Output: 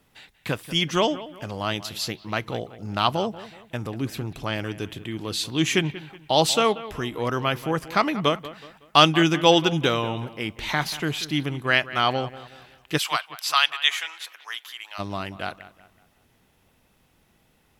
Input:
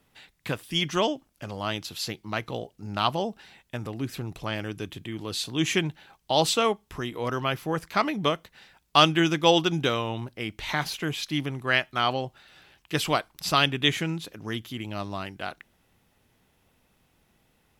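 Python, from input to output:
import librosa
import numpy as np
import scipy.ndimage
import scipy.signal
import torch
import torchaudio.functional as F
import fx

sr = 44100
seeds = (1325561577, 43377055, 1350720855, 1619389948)

y = fx.highpass(x, sr, hz=890.0, slope=24, at=(12.97, 14.98), fade=0.02)
y = fx.echo_bbd(y, sr, ms=186, stages=4096, feedback_pct=38, wet_db=-16.0)
y = y * librosa.db_to_amplitude(3.0)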